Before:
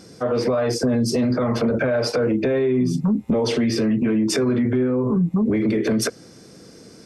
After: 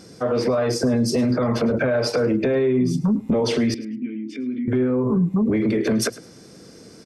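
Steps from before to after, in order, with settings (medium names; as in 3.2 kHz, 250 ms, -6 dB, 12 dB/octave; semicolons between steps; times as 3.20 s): 3.74–4.68 s: vowel filter i; on a send: feedback delay 106 ms, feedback 18%, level -19 dB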